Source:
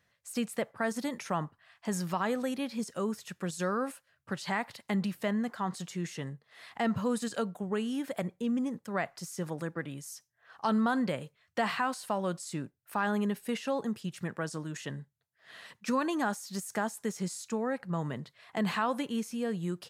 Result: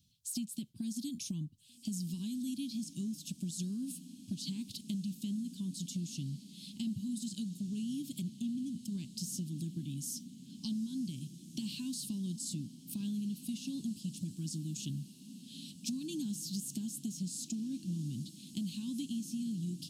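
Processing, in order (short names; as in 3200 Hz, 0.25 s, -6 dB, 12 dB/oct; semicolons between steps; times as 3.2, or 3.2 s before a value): inverse Chebyshev band-stop 460–2000 Hz, stop band 40 dB; compressor, threshold -42 dBFS, peak gain reduction 15 dB; diffused feedback echo 1.794 s, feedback 67%, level -14 dB; gain +6 dB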